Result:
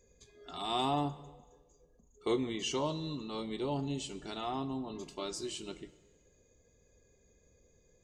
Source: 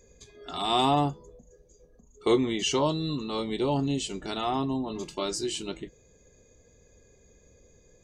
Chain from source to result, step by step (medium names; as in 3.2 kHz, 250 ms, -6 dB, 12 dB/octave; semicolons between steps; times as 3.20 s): plate-style reverb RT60 1.3 s, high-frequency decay 0.9×, DRR 14 dB; trim -8.5 dB